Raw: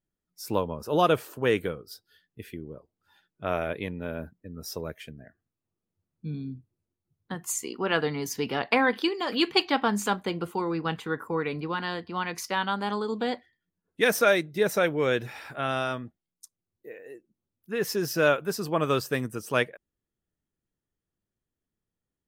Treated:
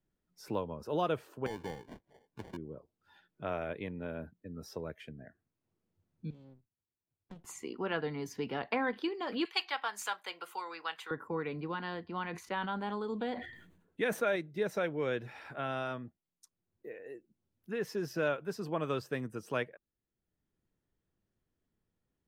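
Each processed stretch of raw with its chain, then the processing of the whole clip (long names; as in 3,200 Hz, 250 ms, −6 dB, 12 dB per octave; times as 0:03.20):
0:01.46–0:02.57: downward compressor 12 to 1, threshold −27 dBFS + sample-rate reduction 1,300 Hz
0:06.30–0:07.45: first-order pre-emphasis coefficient 0.8 + flanger swept by the level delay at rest 2.6 ms, full sweep at −46 dBFS + windowed peak hold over 65 samples
0:09.45–0:11.11: high-pass filter 650 Hz + spectral tilt +4.5 dB per octave
0:12.22–0:14.36: parametric band 5,200 Hz −13.5 dB 0.25 octaves + level that may fall only so fast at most 79 dB per second
whole clip: low-pass filter 2,400 Hz 6 dB per octave; notch filter 1,200 Hz, Q 23; multiband upward and downward compressor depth 40%; level −7.5 dB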